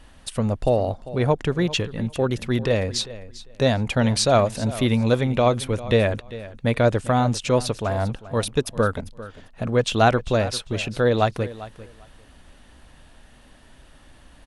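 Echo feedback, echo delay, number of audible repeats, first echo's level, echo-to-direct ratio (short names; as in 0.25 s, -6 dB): 18%, 0.397 s, 2, -16.5 dB, -16.5 dB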